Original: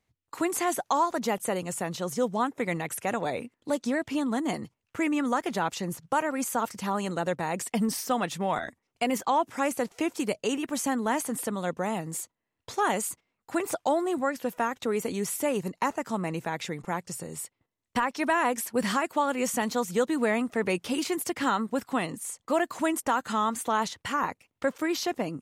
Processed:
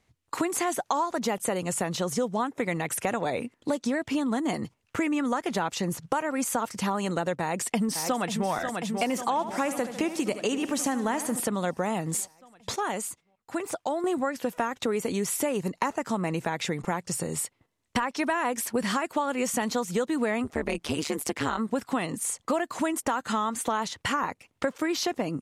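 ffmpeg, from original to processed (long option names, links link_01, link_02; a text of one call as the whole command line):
ffmpeg -i in.wav -filter_complex "[0:a]asplit=2[link_01][link_02];[link_02]afade=type=in:start_time=7.41:duration=0.01,afade=type=out:start_time=8.49:duration=0.01,aecho=0:1:540|1080|1620|2160|2700|3240|3780|4320|4860:0.316228|0.205548|0.133606|0.0868441|0.0564486|0.0366916|0.0238495|0.0155022|0.0100764[link_03];[link_01][link_03]amix=inputs=2:normalize=0,asettb=1/sr,asplit=3[link_04][link_05][link_06];[link_04]atrim=end=9.334[link_07];[link_05]atrim=start=9.33:end=11.4,asetpts=PTS-STARTPTS,afade=type=in:duration=0.004:curve=qsin,afade=type=out:start_time=2.066:duration=0.004:curve=qsin,aecho=1:1:74|148|222|296|370:0.224|0.107|0.0516|0.0248|0.0119,atrim=end_sample=91287[link_08];[link_06]atrim=start=11.396[link_09];[link_07][link_08]acrossfade=duration=0.004:curve1=hsin:curve2=qsin[link_10];[link_10][link_09]acrossfade=duration=0.004:curve1=qsin:curve2=hsin,asplit=3[link_11][link_12][link_13];[link_11]afade=type=out:start_time=20.43:duration=0.02[link_14];[link_12]tremolo=f=150:d=0.974,afade=type=in:start_time=20.43:duration=0.02,afade=type=out:start_time=21.57:duration=0.02[link_15];[link_13]afade=type=in:start_time=21.57:duration=0.02[link_16];[link_14][link_15][link_16]amix=inputs=3:normalize=0,asplit=3[link_17][link_18][link_19];[link_17]atrim=end=12.762[link_20];[link_18]atrim=start=12.758:end=14.042,asetpts=PTS-STARTPTS,volume=-9.5dB[link_21];[link_19]atrim=start=14.038[link_22];[link_20][link_21]acrossfade=duration=0.004:curve1=hsin:curve2=hsin[link_23];[link_23][link_22]acrossfade=duration=0.004:curve1=hsin:curve2=hsin,lowpass=12000,acompressor=threshold=-34dB:ratio=4,volume=8.5dB" out.wav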